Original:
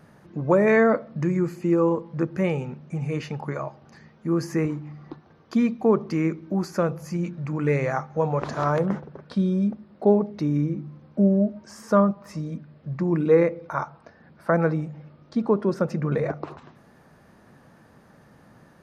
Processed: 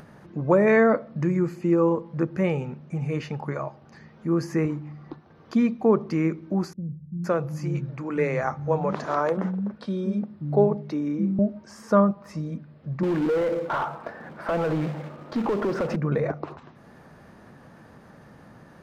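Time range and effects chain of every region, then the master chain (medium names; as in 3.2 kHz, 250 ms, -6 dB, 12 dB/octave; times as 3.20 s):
6.73–11.39 s: high-pass 63 Hz + bands offset in time lows, highs 510 ms, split 200 Hz
13.03–15.96 s: compression 12:1, threshold -26 dBFS + short-mantissa float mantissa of 2-bit + overdrive pedal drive 26 dB, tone 1 kHz, clips at -14.5 dBFS
whole clip: treble shelf 6.2 kHz -6 dB; upward compressor, threshold -42 dBFS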